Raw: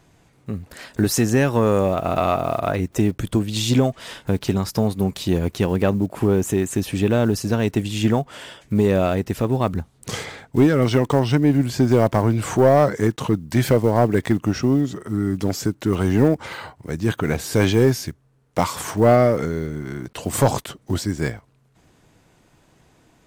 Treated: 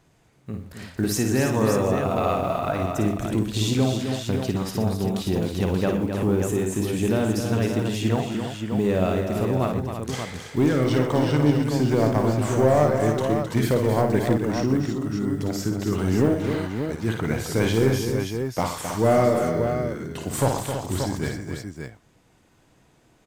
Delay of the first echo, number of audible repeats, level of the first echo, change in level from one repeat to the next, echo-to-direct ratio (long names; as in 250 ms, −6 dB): 54 ms, 5, −5.5 dB, repeats not evenly spaced, −0.5 dB